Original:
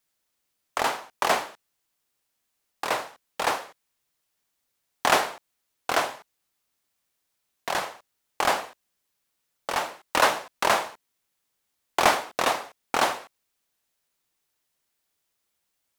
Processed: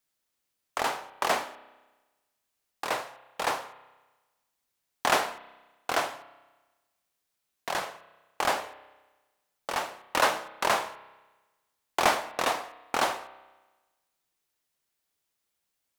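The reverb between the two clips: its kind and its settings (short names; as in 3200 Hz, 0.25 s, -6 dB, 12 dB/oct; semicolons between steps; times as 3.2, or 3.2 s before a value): spring tank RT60 1.2 s, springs 31 ms, chirp 55 ms, DRR 14.5 dB; gain -3.5 dB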